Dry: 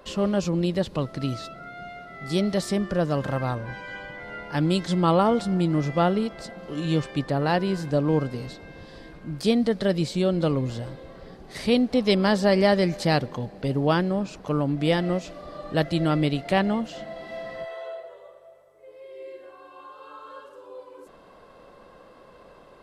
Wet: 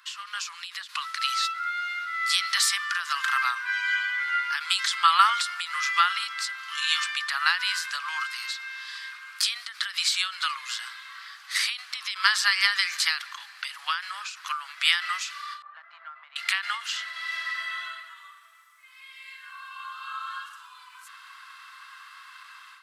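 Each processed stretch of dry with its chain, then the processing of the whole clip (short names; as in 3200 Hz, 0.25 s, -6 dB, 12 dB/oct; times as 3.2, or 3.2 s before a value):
15.62–16.36 hard clip -17.5 dBFS + Butterworth band-pass 350 Hz, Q 0.57 + air absorption 74 m
whole clip: steep high-pass 1200 Hz 48 dB/oct; AGC gain up to 10.5 dB; ending taper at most 120 dB/s; gain +3 dB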